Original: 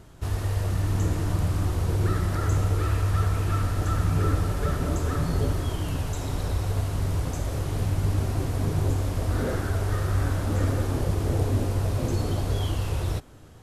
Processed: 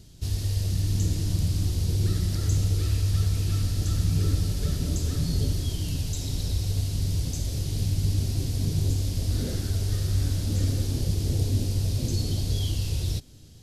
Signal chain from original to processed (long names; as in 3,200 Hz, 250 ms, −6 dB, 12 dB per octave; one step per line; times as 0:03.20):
drawn EQ curve 200 Hz 0 dB, 1,200 Hz −18 dB, 4,700 Hz +9 dB, 8,000 Hz +3 dB